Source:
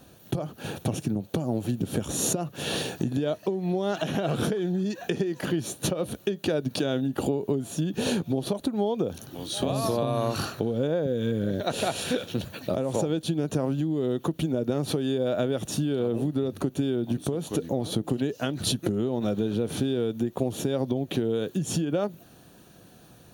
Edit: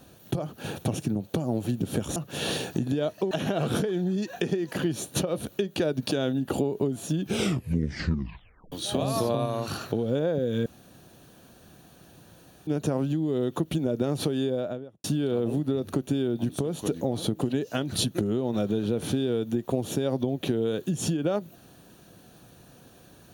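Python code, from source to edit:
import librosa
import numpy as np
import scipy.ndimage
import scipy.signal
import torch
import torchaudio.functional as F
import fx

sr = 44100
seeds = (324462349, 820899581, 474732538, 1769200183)

y = fx.studio_fade_out(x, sr, start_s=15.04, length_s=0.68)
y = fx.edit(y, sr, fx.cut(start_s=2.16, length_s=0.25),
    fx.cut(start_s=3.56, length_s=0.43),
    fx.tape_stop(start_s=7.88, length_s=1.52),
    fx.clip_gain(start_s=10.14, length_s=0.35, db=-3.5),
    fx.room_tone_fill(start_s=11.34, length_s=2.01), tone=tone)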